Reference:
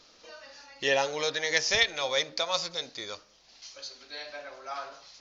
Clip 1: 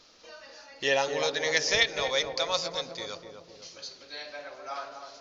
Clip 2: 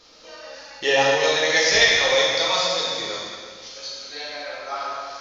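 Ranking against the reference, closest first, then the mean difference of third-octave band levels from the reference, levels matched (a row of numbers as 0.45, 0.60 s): 1, 2; 3.0, 5.0 dB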